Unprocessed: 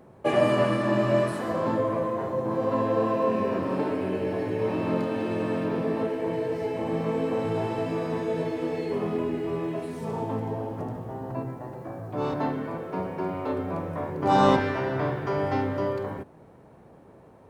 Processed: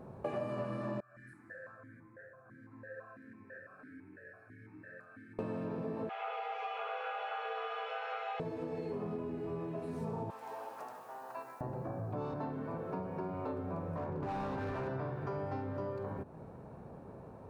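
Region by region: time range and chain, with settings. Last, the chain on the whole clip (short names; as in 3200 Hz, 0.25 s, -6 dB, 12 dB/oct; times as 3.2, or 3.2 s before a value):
1–5.39 EQ curve 110 Hz 0 dB, 200 Hz -17 dB, 970 Hz -25 dB, 1600 Hz +12 dB, 2800 Hz -22 dB, 9000 Hz +11 dB + vowel sequencer 6 Hz
6.09–8.4 EQ curve 140 Hz 0 dB, 230 Hz -18 dB, 360 Hz -1 dB, 650 Hz -10 dB, 930 Hz +5 dB, 2900 Hz +13 dB, 4200 Hz -3 dB, 6300 Hz -5 dB, 12000 Hz -30 dB + frequency shift +340 Hz
10.3–11.61 HPF 1200 Hz + high shelf 4800 Hz +9 dB
13.96–14.88 compressor, threshold -22 dBFS + high shelf 6400 Hz -11.5 dB + hard clip -27.5 dBFS
whole clip: tone controls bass +3 dB, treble -7 dB; compressor, threshold -37 dBFS; thirty-one-band EQ 315 Hz -4 dB, 2000 Hz -8 dB, 3150 Hz -8 dB; gain +1 dB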